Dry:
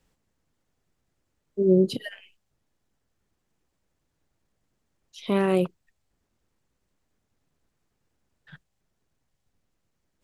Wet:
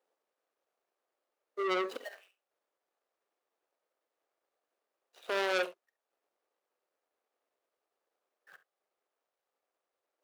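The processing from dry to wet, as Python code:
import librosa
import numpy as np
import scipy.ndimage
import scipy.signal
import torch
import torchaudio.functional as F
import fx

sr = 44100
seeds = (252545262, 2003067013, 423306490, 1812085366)

y = scipy.signal.medfilt(x, 41)
y = scipy.signal.sosfilt(scipy.signal.butter(4, 510.0, 'highpass', fs=sr, output='sos'), y)
y = fx.peak_eq(y, sr, hz=1200.0, db=5.0, octaves=0.23)
y = fx.room_early_taps(y, sr, ms=(46, 69), db=(-17.0, -16.5))
y = fx.transformer_sat(y, sr, knee_hz=2400.0)
y = F.gain(torch.from_numpy(y), 4.0).numpy()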